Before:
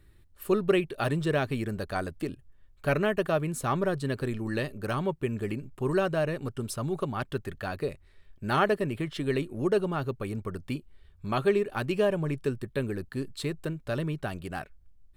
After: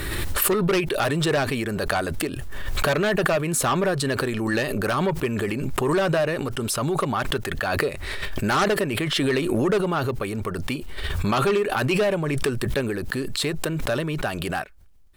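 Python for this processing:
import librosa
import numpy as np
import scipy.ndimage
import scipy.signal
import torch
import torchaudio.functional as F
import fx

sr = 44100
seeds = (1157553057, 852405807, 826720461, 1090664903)

p1 = fx.low_shelf(x, sr, hz=290.0, db=-12.0)
p2 = fx.fold_sine(p1, sr, drive_db=15, ceiling_db=-10.5)
p3 = p1 + (p2 * librosa.db_to_amplitude(-11.0))
y = fx.pre_swell(p3, sr, db_per_s=21.0)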